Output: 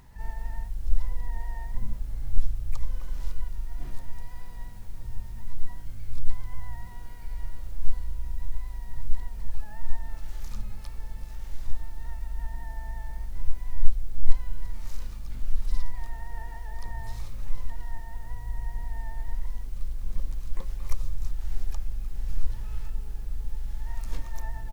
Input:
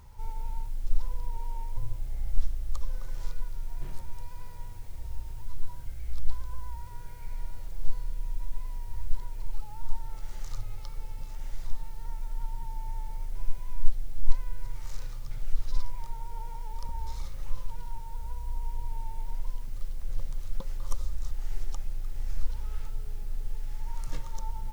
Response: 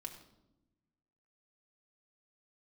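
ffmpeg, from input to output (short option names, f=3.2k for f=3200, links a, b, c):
-filter_complex "[0:a]bandreject=f=60:t=h:w=6,bandreject=f=120:t=h:w=6,bandreject=f=180:t=h:w=6,bandreject=f=240:t=h:w=6,bandreject=f=300:t=h:w=6,asplit=4[a][b][c][d];[b]asetrate=33038,aresample=44100,atempo=1.33484,volume=-9dB[e];[c]asetrate=35002,aresample=44100,atempo=1.25992,volume=-17dB[f];[d]asetrate=88200,aresample=44100,atempo=0.5,volume=-4dB[g];[a][e][f][g]amix=inputs=4:normalize=0,volume=-2dB"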